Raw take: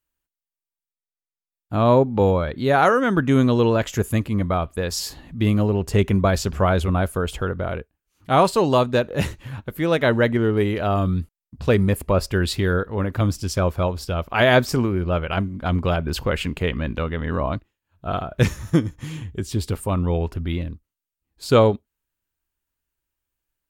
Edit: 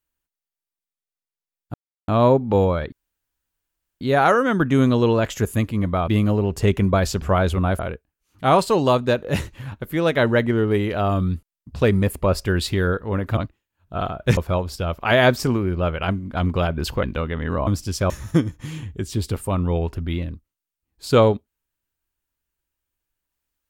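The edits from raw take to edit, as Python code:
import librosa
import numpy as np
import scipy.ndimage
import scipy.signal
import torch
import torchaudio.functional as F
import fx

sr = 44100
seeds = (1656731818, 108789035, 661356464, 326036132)

y = fx.edit(x, sr, fx.insert_silence(at_s=1.74, length_s=0.34),
    fx.insert_room_tone(at_s=2.58, length_s=1.09),
    fx.cut(start_s=4.65, length_s=0.74),
    fx.cut(start_s=7.1, length_s=0.55),
    fx.swap(start_s=13.23, length_s=0.43, other_s=17.49, other_length_s=1.0),
    fx.cut(start_s=16.32, length_s=0.53), tone=tone)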